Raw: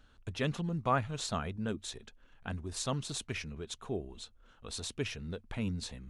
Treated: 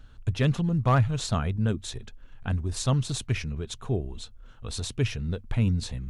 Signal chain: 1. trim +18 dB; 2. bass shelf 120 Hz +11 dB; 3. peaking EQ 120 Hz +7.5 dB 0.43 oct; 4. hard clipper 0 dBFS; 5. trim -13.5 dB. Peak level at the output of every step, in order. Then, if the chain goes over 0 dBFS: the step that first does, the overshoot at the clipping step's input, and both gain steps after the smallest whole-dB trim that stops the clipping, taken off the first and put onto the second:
+0.5 dBFS, +2.0 dBFS, +3.5 dBFS, 0.0 dBFS, -13.5 dBFS; step 1, 3.5 dB; step 1 +14 dB, step 5 -9.5 dB

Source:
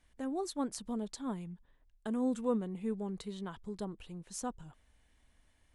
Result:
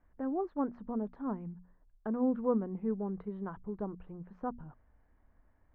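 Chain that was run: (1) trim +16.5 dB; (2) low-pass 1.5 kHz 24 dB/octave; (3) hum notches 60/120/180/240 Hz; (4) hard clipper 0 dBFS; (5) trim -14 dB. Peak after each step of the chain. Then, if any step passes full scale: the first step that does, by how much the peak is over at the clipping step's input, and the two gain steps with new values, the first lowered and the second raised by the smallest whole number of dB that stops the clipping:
-4.0 dBFS, -4.5 dBFS, -5.0 dBFS, -5.0 dBFS, -19.0 dBFS; nothing clips

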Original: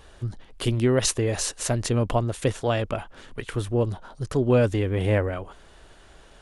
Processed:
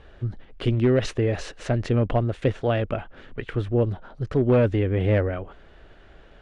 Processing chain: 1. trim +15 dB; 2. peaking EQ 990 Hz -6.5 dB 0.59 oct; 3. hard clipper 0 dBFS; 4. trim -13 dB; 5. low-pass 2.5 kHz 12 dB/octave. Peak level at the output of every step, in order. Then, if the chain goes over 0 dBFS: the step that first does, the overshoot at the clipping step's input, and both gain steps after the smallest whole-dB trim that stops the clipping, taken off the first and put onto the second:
+6.5 dBFS, +5.5 dBFS, 0.0 dBFS, -13.0 dBFS, -12.5 dBFS; step 1, 5.5 dB; step 1 +9 dB, step 4 -7 dB

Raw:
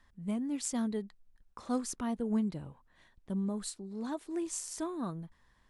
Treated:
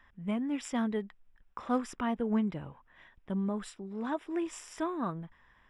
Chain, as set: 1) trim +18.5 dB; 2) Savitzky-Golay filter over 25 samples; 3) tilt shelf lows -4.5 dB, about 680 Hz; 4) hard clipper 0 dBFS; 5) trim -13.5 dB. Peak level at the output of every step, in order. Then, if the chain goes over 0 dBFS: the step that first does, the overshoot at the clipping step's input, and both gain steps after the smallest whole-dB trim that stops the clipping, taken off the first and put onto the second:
-2.5 dBFS, -3.0 dBFS, -5.5 dBFS, -5.5 dBFS, -19.0 dBFS; nothing clips

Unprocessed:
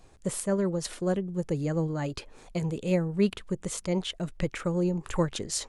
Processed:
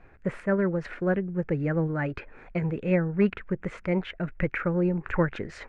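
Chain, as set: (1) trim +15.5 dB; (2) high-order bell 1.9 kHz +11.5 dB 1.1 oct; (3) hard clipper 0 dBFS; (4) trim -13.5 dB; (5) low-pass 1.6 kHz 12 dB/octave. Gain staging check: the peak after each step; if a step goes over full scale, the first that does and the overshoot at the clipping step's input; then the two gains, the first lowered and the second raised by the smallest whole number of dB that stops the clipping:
+2.5 dBFS, +4.0 dBFS, 0.0 dBFS, -13.5 dBFS, -13.5 dBFS; step 1, 4.0 dB; step 1 +11.5 dB, step 4 -9.5 dB

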